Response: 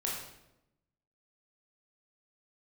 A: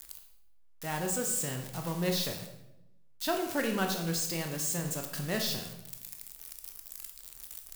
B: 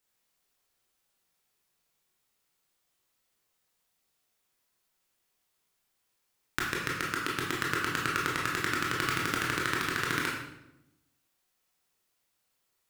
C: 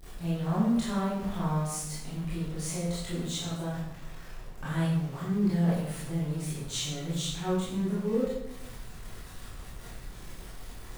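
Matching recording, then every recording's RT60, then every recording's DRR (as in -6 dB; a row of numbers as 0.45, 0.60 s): B; 0.90, 0.90, 0.90 s; 3.0, -4.0, -10.0 dB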